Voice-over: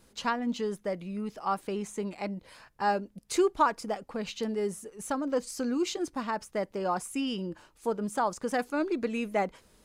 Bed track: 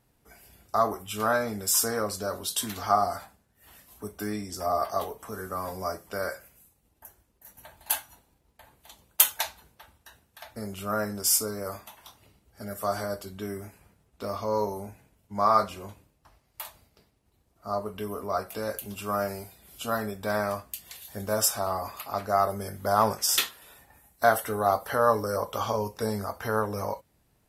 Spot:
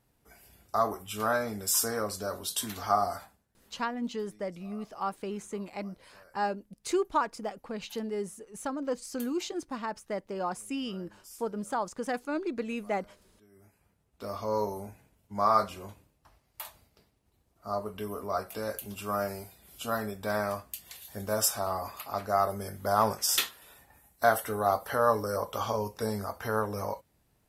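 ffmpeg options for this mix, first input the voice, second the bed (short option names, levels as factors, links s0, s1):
-filter_complex "[0:a]adelay=3550,volume=0.708[s0];[1:a]volume=11.9,afade=t=out:st=3.14:d=0.74:silence=0.0630957,afade=t=in:st=13.51:d=1:silence=0.0595662[s1];[s0][s1]amix=inputs=2:normalize=0"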